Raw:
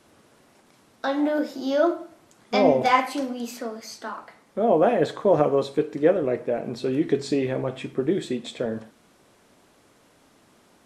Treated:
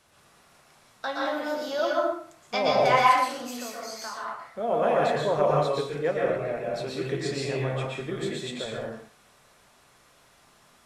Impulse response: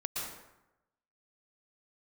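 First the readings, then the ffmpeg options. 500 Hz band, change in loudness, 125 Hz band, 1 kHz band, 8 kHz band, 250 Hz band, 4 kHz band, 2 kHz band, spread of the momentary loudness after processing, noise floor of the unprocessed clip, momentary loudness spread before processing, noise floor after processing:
−3.5 dB, −3.0 dB, +0.5 dB, +1.5 dB, +2.0 dB, −9.0 dB, +2.0 dB, +1.5 dB, 15 LU, −59 dBFS, 15 LU, −59 dBFS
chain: -filter_complex "[0:a]equalizer=frequency=290:width=0.81:gain=-12.5[link_01];[1:a]atrim=start_sample=2205,afade=type=out:start_time=0.34:duration=0.01,atrim=end_sample=15435,asetrate=43659,aresample=44100[link_02];[link_01][link_02]afir=irnorm=-1:irlink=0"

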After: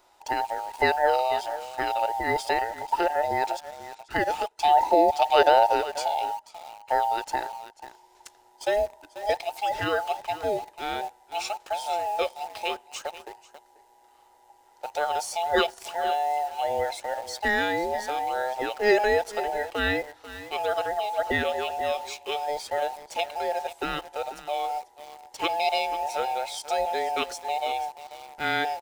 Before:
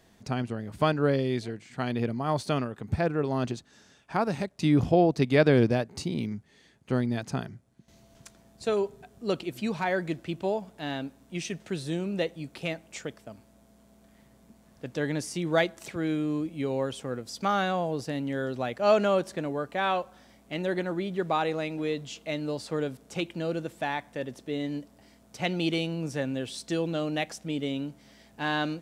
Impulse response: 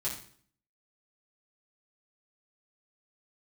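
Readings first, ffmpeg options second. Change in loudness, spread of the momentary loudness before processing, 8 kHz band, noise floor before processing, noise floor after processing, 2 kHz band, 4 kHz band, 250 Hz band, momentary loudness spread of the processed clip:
+2.5 dB, 12 LU, +4.0 dB, −59 dBFS, −58 dBFS, +5.0 dB, +4.5 dB, −9.0 dB, 13 LU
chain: -filter_complex "[0:a]afftfilt=real='real(if(between(b,1,1008),(2*floor((b-1)/48)+1)*48-b,b),0)':imag='imag(if(between(b,1,1008),(2*floor((b-1)/48)+1)*48-b,b),0)*if(between(b,1,1008),-1,1)':win_size=2048:overlap=0.75,equalizer=frequency=170:width_type=o:width=1.2:gain=-14.5,aecho=1:1:489:0.178,asplit=2[link_01][link_02];[link_02]acrusher=bits=6:mix=0:aa=0.000001,volume=-6dB[link_03];[link_01][link_03]amix=inputs=2:normalize=0"

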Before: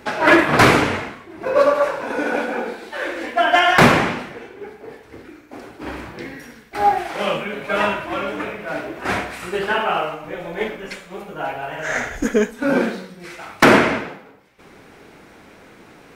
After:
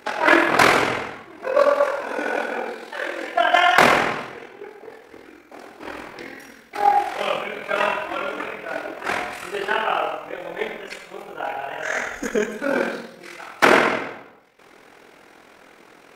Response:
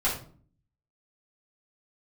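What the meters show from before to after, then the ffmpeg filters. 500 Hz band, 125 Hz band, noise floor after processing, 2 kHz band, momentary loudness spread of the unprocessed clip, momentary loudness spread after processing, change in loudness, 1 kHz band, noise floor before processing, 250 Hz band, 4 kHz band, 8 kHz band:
−2.5 dB, −12.5 dB, −50 dBFS, −1.5 dB, 21 LU, 21 LU, −2.0 dB, −1.0 dB, −46 dBFS, −7.0 dB, −2.0 dB, −2.0 dB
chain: -filter_complex "[0:a]bass=frequency=250:gain=-13,treble=frequency=4000:gain=0,tremolo=f=42:d=0.667,asplit=2[link_01][link_02];[1:a]atrim=start_sample=2205,adelay=82[link_03];[link_02][link_03]afir=irnorm=-1:irlink=0,volume=-19.5dB[link_04];[link_01][link_04]amix=inputs=2:normalize=0,volume=1dB"

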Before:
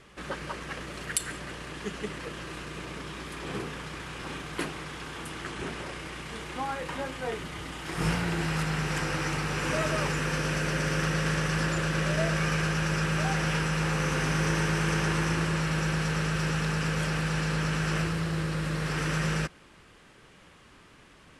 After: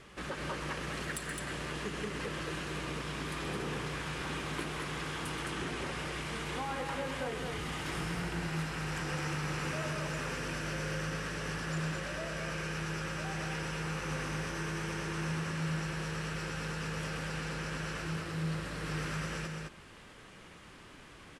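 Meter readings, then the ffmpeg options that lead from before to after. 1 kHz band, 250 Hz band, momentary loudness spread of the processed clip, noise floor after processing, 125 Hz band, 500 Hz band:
−6.0 dB, −7.5 dB, 3 LU, −53 dBFS, −8.0 dB, −6.0 dB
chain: -af "acompressor=threshold=-33dB:ratio=16,asoftclip=type=tanh:threshold=-28.5dB,aecho=1:1:125.4|212.8:0.355|0.631"

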